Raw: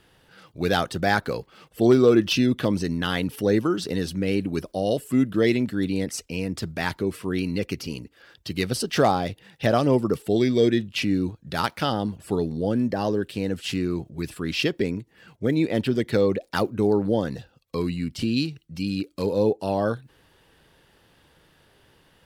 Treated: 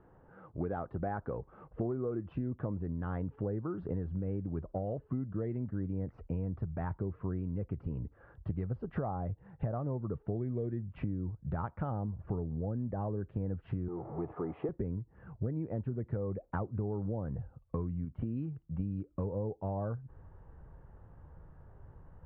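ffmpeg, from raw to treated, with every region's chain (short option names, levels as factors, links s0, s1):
-filter_complex "[0:a]asettb=1/sr,asplit=3[s0][s1][s2];[s0]atrim=end=13.884[s3];[s1]atrim=start=13.88:end=14.69,asetpts=PTS-STARTPTS,afade=t=in:d=0.004:c=qsin,afade=t=out:st=0.806:d=0.004:c=qsin,aeval=exprs='val(0)+0.5*0.02*sgn(val(0))':c=same,highpass=280,equalizer=f=450:t=q:w=4:g=3,equalizer=f=690:t=q:w=4:g=7,equalizer=f=1600:t=q:w=4:g=-9,equalizer=f=2600:t=q:w=4:g=-8,lowpass=f=2800:w=0.5412,lowpass=f=2800:w=1.3066,aecho=1:1:2.4:0.32,atrim=end_sample=35721[s4];[s2]atrim=start=14.686[s5];[s3][s4]acrossfade=d=0.004:c1=hsin:c2=qsin[s6];[s6][s5]acrossfade=d=0.004:c1=qsin:c2=hsin,asettb=1/sr,asplit=3[s7][s8][s9];[s7]atrim=end=18.054[s10];[s8]atrim=start=18.05:end=18.8,asetpts=PTS-STARTPTS,afade=t=in:d=0.004:c=qsin,afade=t=out:st=0.746:d=0.004:c=qsin,lowpass=f=3500:w=0.5412,lowpass=f=3500:w=1.3066,lowshelf=f=110:g=-10.5[s11];[s9]atrim=start=18.796[s12];[s10][s11]acrossfade=d=0.004:c1=hsin:c2=qsin[s13];[s13][s12]acrossfade=d=0.004:c1=qsin:c2=hsin,lowpass=f=1200:w=0.5412,lowpass=f=1200:w=1.3066,asubboost=boost=6:cutoff=110,acompressor=threshold=0.0251:ratio=12"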